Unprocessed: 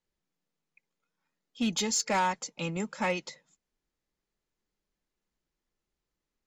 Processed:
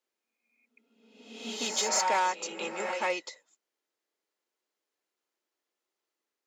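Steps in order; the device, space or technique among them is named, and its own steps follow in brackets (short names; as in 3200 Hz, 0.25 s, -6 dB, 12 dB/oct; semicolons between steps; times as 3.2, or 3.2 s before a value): ghost voice (reverse; reverb RT60 1.1 s, pre-delay 0.119 s, DRR 3 dB; reverse; HPF 330 Hz 24 dB/oct)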